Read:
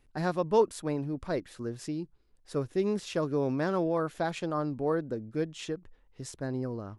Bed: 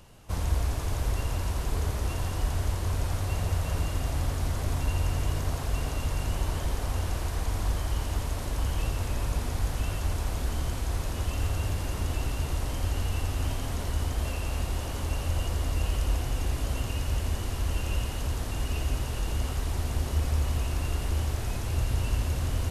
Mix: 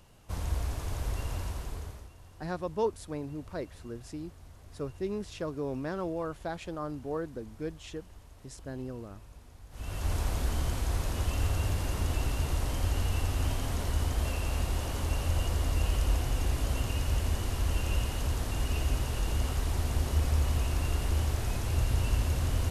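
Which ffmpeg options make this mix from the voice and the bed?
-filter_complex "[0:a]adelay=2250,volume=-5.5dB[a];[1:a]volume=17dB,afade=t=out:st=1.39:d=0.71:silence=0.133352,afade=t=in:st=9.7:d=0.45:silence=0.0794328[b];[a][b]amix=inputs=2:normalize=0"

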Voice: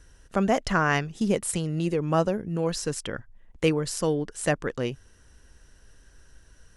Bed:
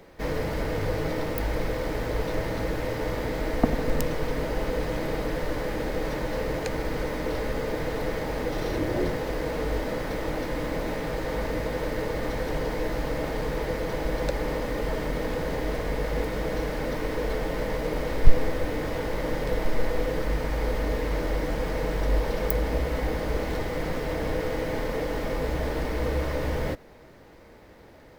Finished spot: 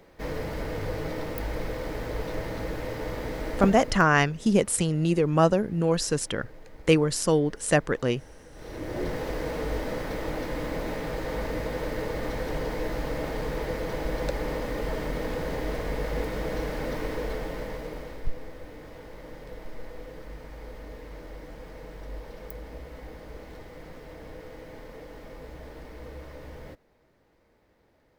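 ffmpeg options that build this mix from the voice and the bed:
-filter_complex "[0:a]adelay=3250,volume=3dB[a];[1:a]volume=16dB,afade=t=out:st=3.58:d=0.46:silence=0.125893,afade=t=in:st=8.53:d=0.69:silence=0.1,afade=t=out:st=17.02:d=1.28:silence=0.223872[b];[a][b]amix=inputs=2:normalize=0"

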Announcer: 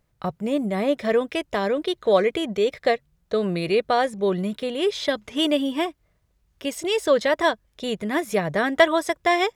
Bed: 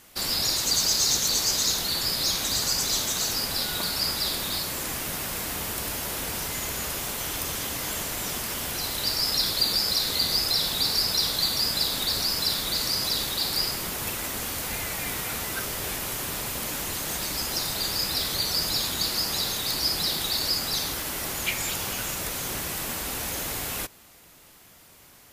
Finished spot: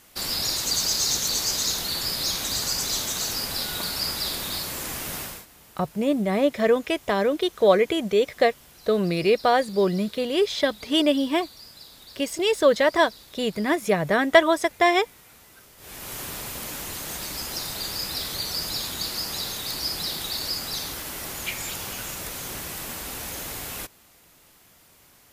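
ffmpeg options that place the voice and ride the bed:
-filter_complex "[0:a]adelay=5550,volume=1dB[a];[1:a]volume=16.5dB,afade=t=out:st=5.19:d=0.27:silence=0.105925,afade=t=in:st=15.77:d=0.41:silence=0.133352[b];[a][b]amix=inputs=2:normalize=0"

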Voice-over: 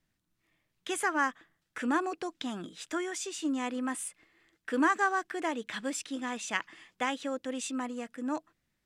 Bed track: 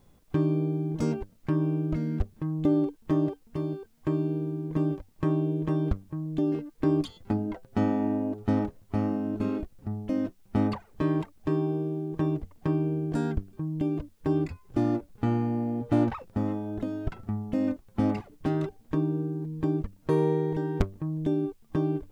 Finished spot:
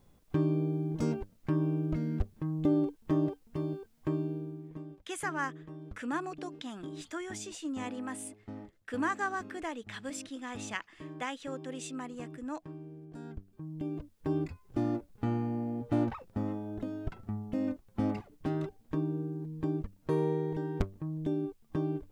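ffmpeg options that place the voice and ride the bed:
-filter_complex "[0:a]adelay=4200,volume=-5.5dB[a];[1:a]volume=10dB,afade=t=out:st=3.99:d=0.85:silence=0.16788,afade=t=in:st=13.12:d=1.2:silence=0.211349[b];[a][b]amix=inputs=2:normalize=0"

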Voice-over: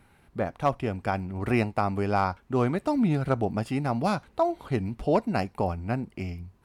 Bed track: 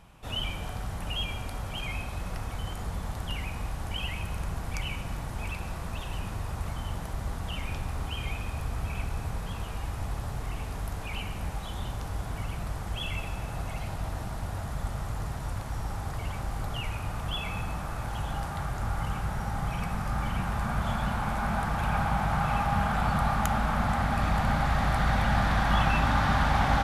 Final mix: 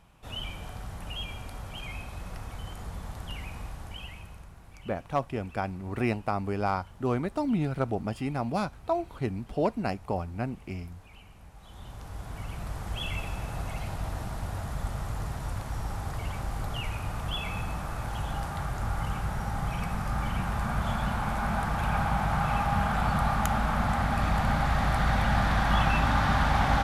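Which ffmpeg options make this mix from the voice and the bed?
-filter_complex "[0:a]adelay=4500,volume=-3.5dB[a];[1:a]volume=12.5dB,afade=t=out:st=3.57:d=0.97:silence=0.237137,afade=t=in:st=11.54:d=1.49:silence=0.141254[b];[a][b]amix=inputs=2:normalize=0"

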